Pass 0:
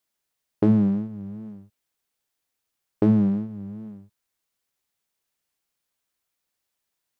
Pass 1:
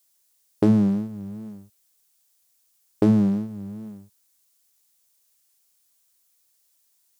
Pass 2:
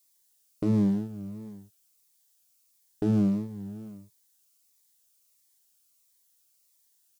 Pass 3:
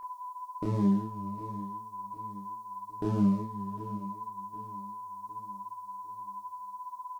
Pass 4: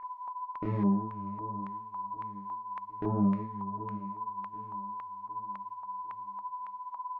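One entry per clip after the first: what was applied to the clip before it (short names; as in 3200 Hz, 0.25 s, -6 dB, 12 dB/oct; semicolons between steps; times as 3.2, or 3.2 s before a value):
tone controls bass -2 dB, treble +14 dB; gain +2 dB
comb 6.8 ms, depth 32%; limiter -14.5 dBFS, peak gain reduction 8.5 dB; cascading phaser falling 1.5 Hz; gain -2 dB
feedback echo 0.756 s, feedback 46%, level -15.5 dB; whine 1000 Hz -37 dBFS; chorus voices 6, 0.98 Hz, delay 28 ms, depth 3 ms
LFO low-pass square 1.8 Hz 870–2100 Hz; gain -2 dB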